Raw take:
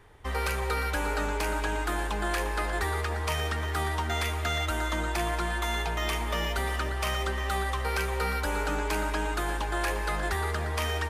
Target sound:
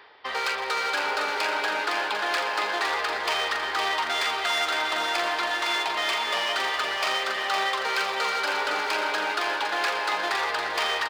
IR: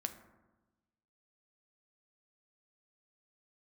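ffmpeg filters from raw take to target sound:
-af "aemphasis=mode=production:type=50fm,aresample=11025,aresample=44100,areverse,acompressor=mode=upward:threshold=-38dB:ratio=2.5,areverse,asoftclip=type=hard:threshold=-27.5dB,highpass=580,aecho=1:1:511|1022|1533|2044|2555|3066|3577:0.562|0.304|0.164|0.0885|0.0478|0.0258|0.0139,volume=6.5dB"

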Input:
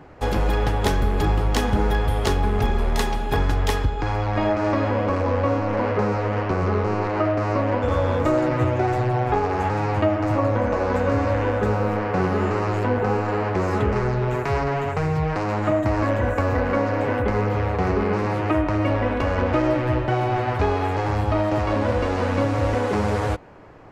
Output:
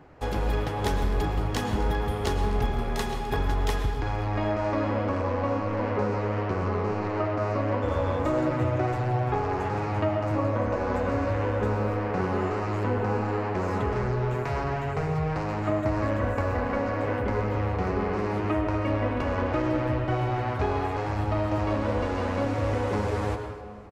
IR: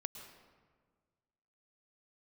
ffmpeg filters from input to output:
-filter_complex "[0:a]aecho=1:1:258|516|774|1032:0.106|0.0561|0.0298|0.0158[link_01];[1:a]atrim=start_sample=2205[link_02];[link_01][link_02]afir=irnorm=-1:irlink=0,volume=-3.5dB"

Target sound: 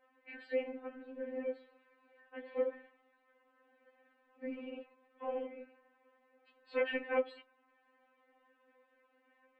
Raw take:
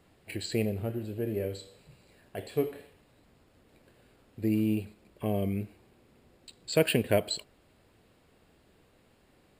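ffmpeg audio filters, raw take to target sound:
ffmpeg -i in.wav -af "highpass=frequency=400:width=0.5412,highpass=frequency=400:width=1.3066,equalizer=frequency=410:width_type=q:width=4:gain=10,equalizer=frequency=600:width_type=q:width=4:gain=-4,equalizer=frequency=1000:width_type=q:width=4:gain=7,equalizer=frequency=1700:width_type=q:width=4:gain=8,lowpass=frequency=2500:width=0.5412,lowpass=frequency=2500:width=1.3066,afftfilt=real='hypot(re,im)*cos(2*PI*random(0))':imag='hypot(re,im)*sin(2*PI*random(1))':win_size=512:overlap=0.75,afftfilt=real='re*3.46*eq(mod(b,12),0)':imag='im*3.46*eq(mod(b,12),0)':win_size=2048:overlap=0.75,volume=2dB" out.wav

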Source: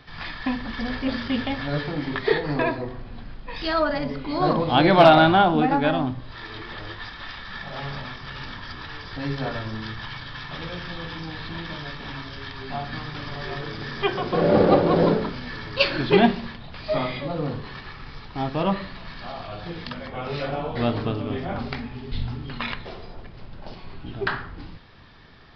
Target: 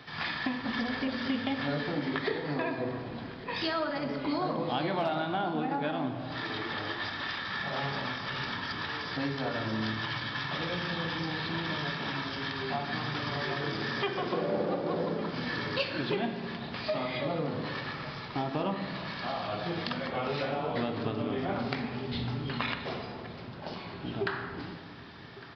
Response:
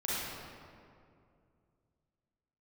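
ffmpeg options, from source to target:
-filter_complex "[0:a]highpass=140,acompressor=threshold=-30dB:ratio=10,aecho=1:1:1156:0.119,asplit=2[link_01][link_02];[1:a]atrim=start_sample=2205[link_03];[link_02][link_03]afir=irnorm=-1:irlink=0,volume=-12.5dB[link_04];[link_01][link_04]amix=inputs=2:normalize=0"

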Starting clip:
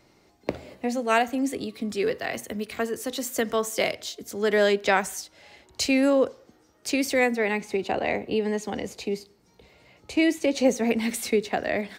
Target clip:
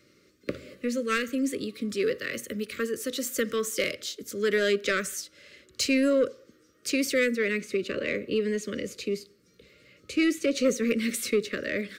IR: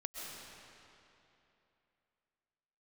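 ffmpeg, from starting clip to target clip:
-af "highpass=frequency=120:poles=1,asoftclip=type=tanh:threshold=-15.5dB,asuperstop=centerf=820:order=12:qfactor=1.5"

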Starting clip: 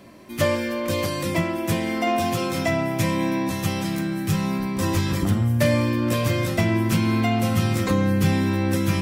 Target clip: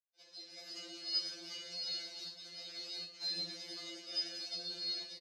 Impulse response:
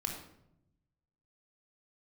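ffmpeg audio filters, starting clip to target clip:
-filter_complex "[0:a]aderivative,asplit=2[link_01][link_02];[link_02]acompressor=threshold=-43dB:ratio=6,volume=-0.5dB[link_03];[link_01][link_03]amix=inputs=2:normalize=0,alimiter=limit=-23dB:level=0:latency=1:release=259,dynaudnorm=framelen=410:gausssize=5:maxgain=6.5dB,acrusher=bits=4:mix=0:aa=0.5,afreqshift=-230,asetrate=68011,aresample=44100,atempo=0.64842,highpass=270,equalizer=frequency=340:width_type=q:width=4:gain=6,equalizer=frequency=520:width_type=q:width=4:gain=-10,equalizer=frequency=780:width_type=q:width=4:gain=-10,equalizer=frequency=1300:width_type=q:width=4:gain=-6,equalizer=frequency=1800:width_type=q:width=4:gain=-4,equalizer=frequency=2700:width_type=q:width=4:gain=6,lowpass=frequency=2900:width=0.5412,lowpass=frequency=2900:width=1.3066,aecho=1:1:180:0.251[link_04];[1:a]atrim=start_sample=2205,afade=type=out:start_time=0.19:duration=0.01,atrim=end_sample=8820[link_05];[link_04][link_05]afir=irnorm=-1:irlink=0,asetrate=76440,aresample=44100,afftfilt=real='re*2.83*eq(mod(b,8),0)':imag='im*2.83*eq(mod(b,8),0)':win_size=2048:overlap=0.75,volume=-3.5dB"

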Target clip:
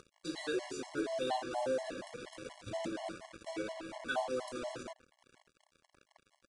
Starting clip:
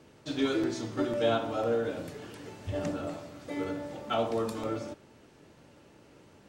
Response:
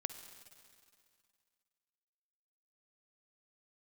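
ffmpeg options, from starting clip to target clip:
-filter_complex "[0:a]equalizer=frequency=91:width_type=o:width=1.4:gain=-12.5,asplit=2[link_01][link_02];[link_02]acompressor=threshold=-47dB:ratio=4,volume=2.5dB[link_03];[link_01][link_03]amix=inputs=2:normalize=0,asplit=2[link_04][link_05];[link_05]adelay=641.4,volume=-18dB,highshelf=frequency=4000:gain=-14.4[link_06];[link_04][link_06]amix=inputs=2:normalize=0,acompressor=mode=upward:threshold=-40dB:ratio=2.5,asetrate=49501,aresample=44100,atempo=0.890899,acrusher=bits=5:mix=0:aa=0.5,aresample=22050,aresample=44100,afftfilt=real='re*gt(sin(2*PI*4.2*pts/sr)*(1-2*mod(floor(b*sr/1024/560),2)),0)':imag='im*gt(sin(2*PI*4.2*pts/sr)*(1-2*mod(floor(b*sr/1024/560),2)),0)':win_size=1024:overlap=0.75,volume=-5dB"

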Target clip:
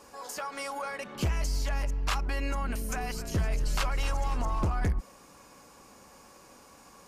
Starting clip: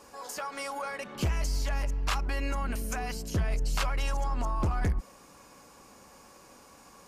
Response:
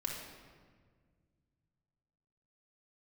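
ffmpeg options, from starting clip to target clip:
-filter_complex "[0:a]asettb=1/sr,asplit=3[link_01][link_02][link_03];[link_01]atrim=end=2.634[link_04];[link_02]atrim=start=2.63:end=4.7,asetpts=PTS-STARTPTS,afade=type=in:duration=0.004:curve=qsin,afade=type=out:start_time=2.066:duration=0.004:curve=qsin,asplit=6[link_05][link_06][link_07][link_08][link_09][link_10];[link_06]adelay=257,afreqshift=-64,volume=-12dB[link_11];[link_07]adelay=514,afreqshift=-128,volume=-17.8dB[link_12];[link_08]adelay=771,afreqshift=-192,volume=-23.7dB[link_13];[link_09]adelay=1028,afreqshift=-256,volume=-29.5dB[link_14];[link_10]adelay=1285,afreqshift=-320,volume=-35.4dB[link_15];[link_05][link_11][link_12][link_13][link_14][link_15]amix=inputs=6:normalize=0,atrim=end_sample=91287[link_16];[link_03]atrim=start=4.696[link_17];[link_04][link_16]acrossfade=duration=0.004:curve1=hsin:curve2=qsin[link_18];[link_18][link_17]acrossfade=duration=0.004:curve1=qsin:curve2=hsin"

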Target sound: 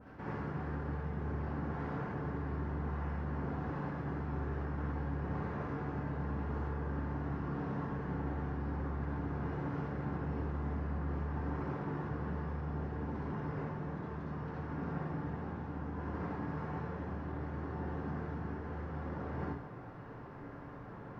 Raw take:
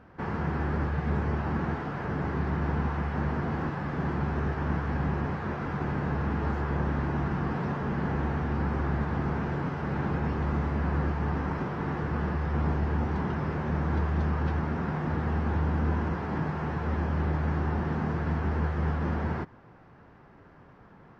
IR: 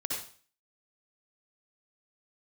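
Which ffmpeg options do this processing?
-filter_complex "[0:a]areverse,acompressor=threshold=-41dB:ratio=10,areverse[link_01];[1:a]atrim=start_sample=2205[link_02];[link_01][link_02]afir=irnorm=-1:irlink=0,adynamicequalizer=threshold=0.001:dfrequency=1600:dqfactor=0.7:tfrequency=1600:tqfactor=0.7:attack=5:release=100:ratio=0.375:range=2.5:mode=cutabove:tftype=highshelf,volume=2dB"

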